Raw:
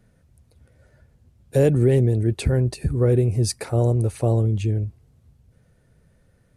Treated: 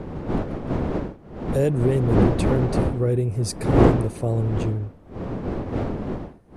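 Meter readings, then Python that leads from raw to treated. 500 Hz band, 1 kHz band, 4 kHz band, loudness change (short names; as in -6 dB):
0.0 dB, +8.5 dB, -2.0 dB, -2.0 dB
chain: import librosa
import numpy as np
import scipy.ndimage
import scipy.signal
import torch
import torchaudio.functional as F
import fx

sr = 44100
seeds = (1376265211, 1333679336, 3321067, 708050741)

y = fx.dmg_wind(x, sr, seeds[0], corner_hz=360.0, level_db=-21.0)
y = F.gain(torch.from_numpy(y), -3.5).numpy()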